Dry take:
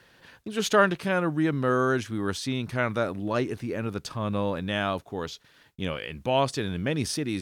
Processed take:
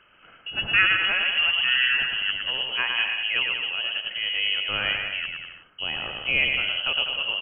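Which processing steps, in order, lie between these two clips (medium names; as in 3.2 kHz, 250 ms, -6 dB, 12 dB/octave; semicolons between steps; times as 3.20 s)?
bouncing-ball echo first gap 110 ms, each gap 0.8×, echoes 5; frequency inversion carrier 3.1 kHz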